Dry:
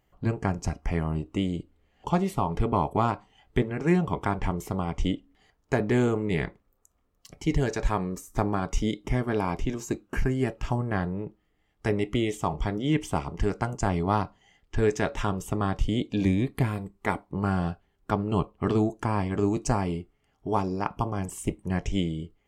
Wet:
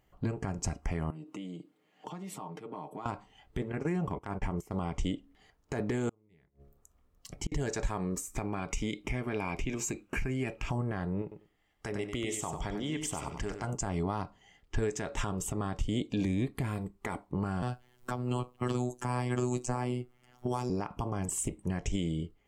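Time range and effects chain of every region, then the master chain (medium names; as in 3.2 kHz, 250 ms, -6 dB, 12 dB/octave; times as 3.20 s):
1.10–3.06 s: comb 6.5 ms, depth 56% + compression 8:1, threshold -37 dBFS + high-pass 170 Hz 24 dB/octave
3.72–4.72 s: gate -33 dBFS, range -16 dB + peaking EQ 3.7 kHz -10.5 dB 0.33 oct + compression 5:1, threshold -26 dBFS
6.09–7.52 s: bass shelf 160 Hz +6 dB + de-hum 69.73 Hz, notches 10 + inverted gate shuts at -23 dBFS, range -40 dB
8.25–10.70 s: peaking EQ 2.4 kHz +13 dB 0.33 oct + compression 2.5:1, threshold -31 dBFS
11.22–13.64 s: bass shelf 430 Hz -6.5 dB + compression, threshold -30 dBFS + feedback delay 95 ms, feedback 17%, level -7.5 dB
17.62–20.70 s: treble shelf 4.4 kHz +8 dB + robot voice 124 Hz + three bands compressed up and down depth 70%
whole clip: dynamic bell 7.7 kHz, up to +8 dB, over -60 dBFS, Q 2.3; compression, threshold -26 dBFS; peak limiter -21.5 dBFS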